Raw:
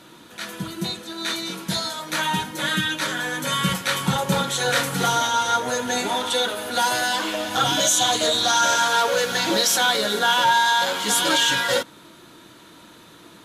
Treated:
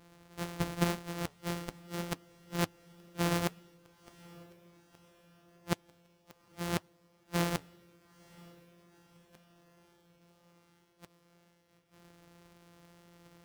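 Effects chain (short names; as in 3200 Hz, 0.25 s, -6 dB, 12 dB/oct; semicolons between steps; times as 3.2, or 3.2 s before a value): sample sorter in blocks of 256 samples; flipped gate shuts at -15 dBFS, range -35 dB; diffused feedback echo 0.924 s, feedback 54%, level -15 dB; flange 1.9 Hz, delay 3.6 ms, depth 9.9 ms, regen -73%; upward expander 1.5:1, over -50 dBFS; gain +3 dB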